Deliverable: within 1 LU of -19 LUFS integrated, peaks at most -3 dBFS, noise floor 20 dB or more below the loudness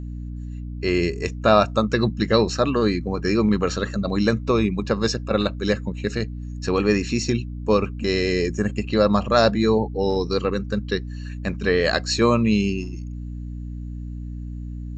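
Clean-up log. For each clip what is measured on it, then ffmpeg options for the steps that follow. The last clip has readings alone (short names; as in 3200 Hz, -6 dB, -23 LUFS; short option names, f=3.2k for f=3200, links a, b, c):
hum 60 Hz; harmonics up to 300 Hz; hum level -29 dBFS; loudness -22.0 LUFS; peak -3.0 dBFS; loudness target -19.0 LUFS
-> -af "bandreject=f=60:t=h:w=4,bandreject=f=120:t=h:w=4,bandreject=f=180:t=h:w=4,bandreject=f=240:t=h:w=4,bandreject=f=300:t=h:w=4"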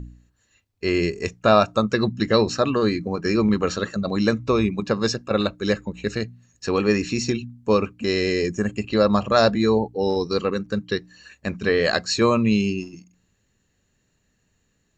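hum none; loudness -22.0 LUFS; peak -3.0 dBFS; loudness target -19.0 LUFS
-> -af "volume=3dB,alimiter=limit=-3dB:level=0:latency=1"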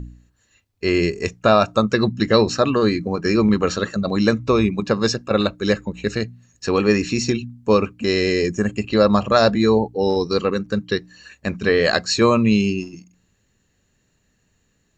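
loudness -19.5 LUFS; peak -3.0 dBFS; noise floor -66 dBFS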